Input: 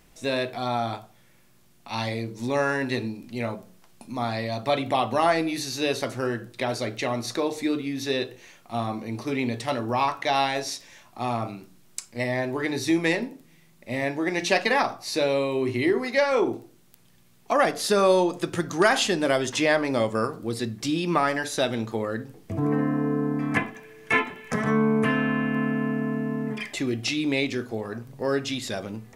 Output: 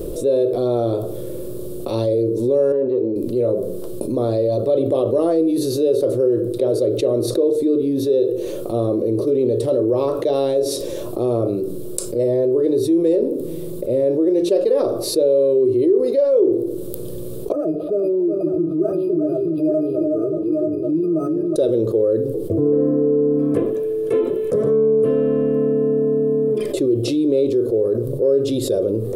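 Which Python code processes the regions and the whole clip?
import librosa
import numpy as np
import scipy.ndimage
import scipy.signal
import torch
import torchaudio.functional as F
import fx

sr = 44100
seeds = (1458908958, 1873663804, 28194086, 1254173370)

y = fx.chain(x, sr, fx.highpass(hz=380.0, slope=6),
    fx.spacing_loss(db_at_10k=42),
    fx.transformer_sat(knee_hz=600.0), at=(2.72, 3.16))
y = fx.chain(y, sr, fx.octave_resonator(note='D#', decay_s=0.14),
    fx.echo_multitap(ms=(275, 366, 882), db=(-19.5, -8.5, -7.5)),
    fx.resample_linear(factor=6), at=(17.52, 21.56))
y = fx.curve_eq(y, sr, hz=(120.0, 230.0, 360.0, 550.0, 780.0, 1200.0, 2000.0, 3700.0, 6300.0, 9500.0), db=(0, -6, 13, 12, -17, -13, -28, -12, -17, -5))
y = fx.env_flatten(y, sr, amount_pct=70)
y = F.gain(torch.from_numpy(y), -6.5).numpy()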